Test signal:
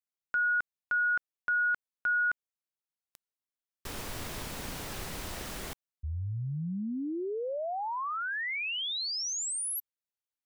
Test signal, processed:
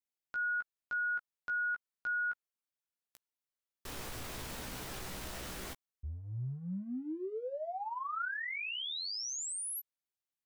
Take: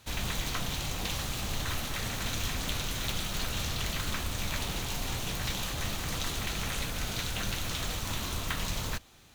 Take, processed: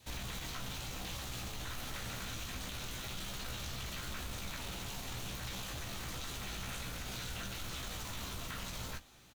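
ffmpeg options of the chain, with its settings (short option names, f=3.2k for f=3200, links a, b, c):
-filter_complex "[0:a]acompressor=threshold=-34dB:ratio=6:attack=0.57:release=49:knee=1:detection=peak,adynamicequalizer=threshold=0.00251:dfrequency=1400:dqfactor=6.5:tfrequency=1400:tqfactor=6.5:attack=5:release=100:ratio=0.375:range=2:mode=boostabove:tftype=bell,asplit=2[a][b];[b]adelay=16,volume=-5.5dB[c];[a][c]amix=inputs=2:normalize=0,volume=-4dB"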